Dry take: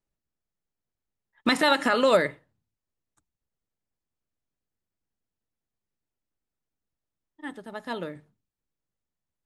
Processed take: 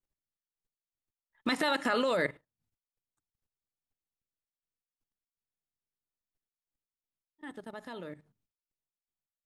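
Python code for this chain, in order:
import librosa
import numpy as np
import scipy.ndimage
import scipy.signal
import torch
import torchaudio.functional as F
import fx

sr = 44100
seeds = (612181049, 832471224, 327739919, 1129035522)

y = fx.level_steps(x, sr, step_db=14)
y = fx.step_gate(y, sr, bpm=81, pattern='xx.x.x.xxxx', floor_db=-12.0, edge_ms=4.5)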